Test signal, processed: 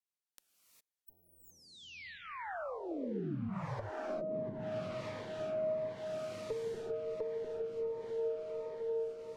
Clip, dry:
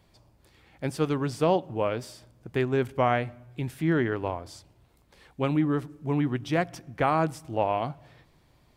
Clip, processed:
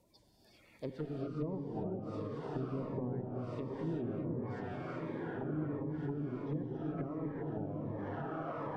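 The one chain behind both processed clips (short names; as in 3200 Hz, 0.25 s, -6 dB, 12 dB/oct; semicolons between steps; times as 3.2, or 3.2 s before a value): bin magnitudes rounded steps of 30 dB; tube stage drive 18 dB, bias 0.45; on a send: diffused feedback echo 1.24 s, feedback 50%, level -5.5 dB; on the sum: treble ducked by the level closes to 330 Hz, closed at -26 dBFS; low shelf 280 Hz -7.5 dB; non-linear reverb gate 0.43 s rising, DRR -0.5 dB; in parallel at 0 dB: compressor, threshold -37 dBFS; on the sum: cascading phaser falling 1.4 Hz; gain -7.5 dB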